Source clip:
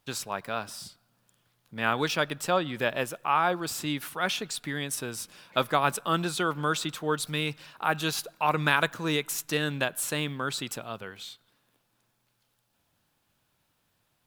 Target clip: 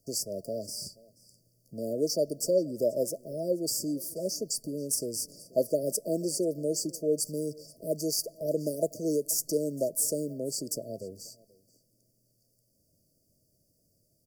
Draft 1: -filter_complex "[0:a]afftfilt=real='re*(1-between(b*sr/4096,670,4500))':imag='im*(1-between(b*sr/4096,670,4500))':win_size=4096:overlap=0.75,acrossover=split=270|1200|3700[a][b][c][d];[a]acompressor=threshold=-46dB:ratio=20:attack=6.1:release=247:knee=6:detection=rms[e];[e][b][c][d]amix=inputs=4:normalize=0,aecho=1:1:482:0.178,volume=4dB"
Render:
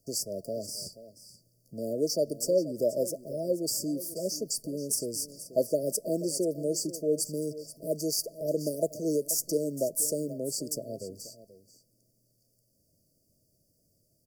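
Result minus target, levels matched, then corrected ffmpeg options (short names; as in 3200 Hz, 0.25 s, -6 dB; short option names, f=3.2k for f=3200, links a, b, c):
echo-to-direct +4.5 dB
-filter_complex "[0:a]afftfilt=real='re*(1-between(b*sr/4096,670,4500))':imag='im*(1-between(b*sr/4096,670,4500))':win_size=4096:overlap=0.75,acrossover=split=270|1200|3700[a][b][c][d];[a]acompressor=threshold=-46dB:ratio=20:attack=6.1:release=247:knee=6:detection=rms[e];[e][b][c][d]amix=inputs=4:normalize=0,aecho=1:1:482:0.0668,volume=4dB"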